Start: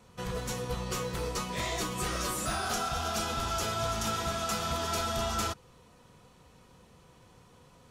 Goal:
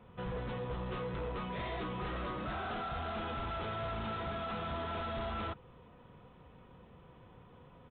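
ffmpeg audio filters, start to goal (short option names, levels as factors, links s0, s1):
-af "aresample=8000,asoftclip=type=tanh:threshold=0.0168,aresample=44100,highshelf=f=2400:g=-9,volume=1.19"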